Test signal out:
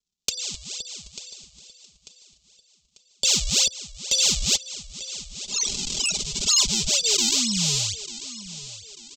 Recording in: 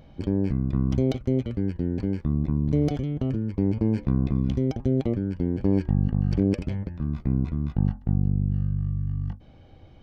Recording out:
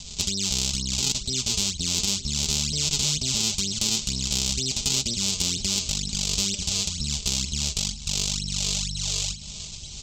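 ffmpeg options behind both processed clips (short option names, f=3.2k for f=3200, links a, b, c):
-filter_complex "[0:a]acrossover=split=350|1100|3500[a][b][c][d];[a]acompressor=threshold=-26dB:ratio=4[e];[b]acompressor=threshold=-33dB:ratio=4[f];[c]acompressor=threshold=-46dB:ratio=4[g];[d]acompressor=threshold=-45dB:ratio=4[h];[e][f][g][h]amix=inputs=4:normalize=0,equalizer=f=80:w=0.92:g=8,bandreject=f=500:w=12,aresample=16000,acrusher=samples=16:mix=1:aa=0.000001:lfo=1:lforange=25.6:lforate=2.1,aresample=44100,acompressor=threshold=-29dB:ratio=4,asplit=2[i][j];[j]aecho=0:1:893|1786|2679|3572:0.158|0.0634|0.0254|0.0101[k];[i][k]amix=inputs=2:normalize=0,asoftclip=type=tanh:threshold=-22dB,aecho=1:1:4.9:0.64,aexciter=amount=14.7:drive=8.9:freq=2.8k,lowshelf=f=210:g=8.5,volume=-5.5dB"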